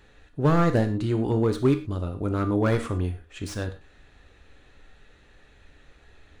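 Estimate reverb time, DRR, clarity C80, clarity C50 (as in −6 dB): non-exponential decay, 6.0 dB, 15.5 dB, 11.0 dB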